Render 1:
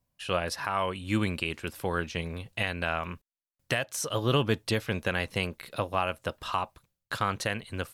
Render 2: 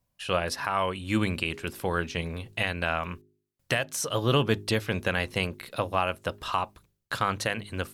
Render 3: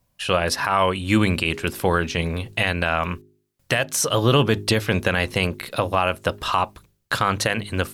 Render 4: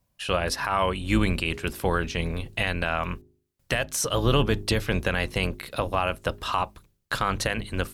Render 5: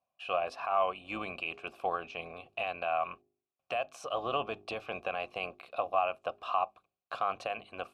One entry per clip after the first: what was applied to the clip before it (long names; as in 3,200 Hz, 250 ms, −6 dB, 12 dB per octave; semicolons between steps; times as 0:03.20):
hum removal 51.08 Hz, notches 8; level +2 dB
brickwall limiter −16 dBFS, peak gain reduction 5 dB; level +9 dB
sub-octave generator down 2 octaves, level −3 dB; level −5 dB
formant filter a; level +3.5 dB